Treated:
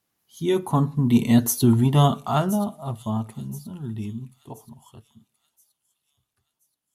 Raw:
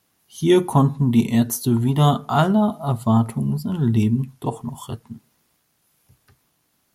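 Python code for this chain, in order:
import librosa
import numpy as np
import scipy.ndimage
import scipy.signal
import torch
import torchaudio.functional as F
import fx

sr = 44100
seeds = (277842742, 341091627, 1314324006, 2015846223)

y = fx.doppler_pass(x, sr, speed_mps=10, closest_m=4.2, pass_at_s=1.58)
y = fx.echo_wet_highpass(y, sr, ms=1026, feedback_pct=41, hz=4900.0, wet_db=-13.0)
y = y * 10.0 ** (2.0 / 20.0)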